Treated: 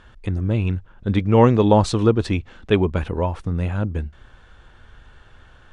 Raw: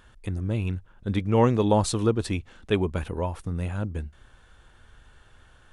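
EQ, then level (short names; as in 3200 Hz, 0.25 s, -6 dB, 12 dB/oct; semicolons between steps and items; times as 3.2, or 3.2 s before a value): air absorption 91 m; +6.5 dB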